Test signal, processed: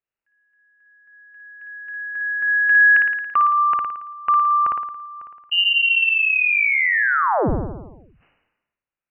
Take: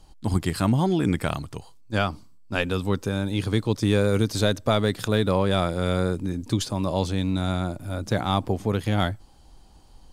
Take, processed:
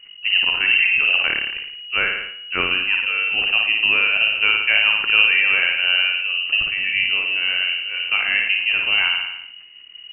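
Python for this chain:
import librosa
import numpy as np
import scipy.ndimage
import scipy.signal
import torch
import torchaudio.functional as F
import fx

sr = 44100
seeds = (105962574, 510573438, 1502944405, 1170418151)

y = fx.room_flutter(x, sr, wall_m=9.6, rt60_s=0.72)
y = fx.freq_invert(y, sr, carrier_hz=2900)
y = fx.sustainer(y, sr, db_per_s=57.0)
y = y * librosa.db_to_amplitude(2.5)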